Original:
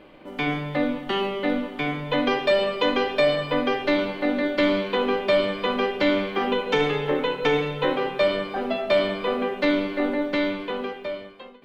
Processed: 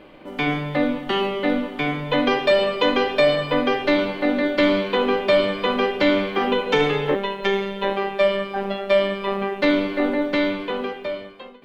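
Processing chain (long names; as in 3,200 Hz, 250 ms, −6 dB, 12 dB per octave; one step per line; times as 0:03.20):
0:07.15–0:09.62: phases set to zero 197 Hz
level +3 dB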